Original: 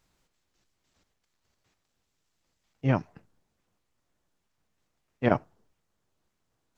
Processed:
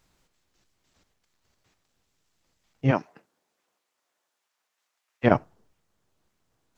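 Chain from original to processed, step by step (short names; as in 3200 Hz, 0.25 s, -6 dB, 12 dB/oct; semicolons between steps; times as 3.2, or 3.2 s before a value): 2.9–5.23 HPF 270 Hz -> 1100 Hz 12 dB/oct; gain +4 dB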